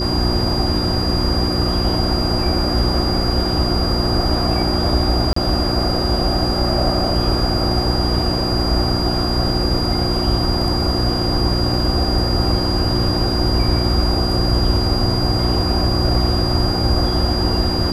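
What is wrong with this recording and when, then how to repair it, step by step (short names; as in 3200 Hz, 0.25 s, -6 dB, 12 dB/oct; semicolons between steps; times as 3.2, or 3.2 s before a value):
hum 60 Hz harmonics 6 -22 dBFS
tone 4800 Hz -23 dBFS
5.33–5.36 gap 34 ms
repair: notch 4800 Hz, Q 30; de-hum 60 Hz, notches 6; interpolate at 5.33, 34 ms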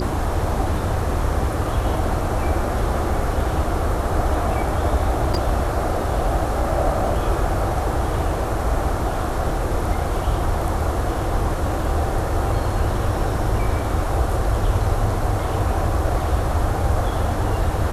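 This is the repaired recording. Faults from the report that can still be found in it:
none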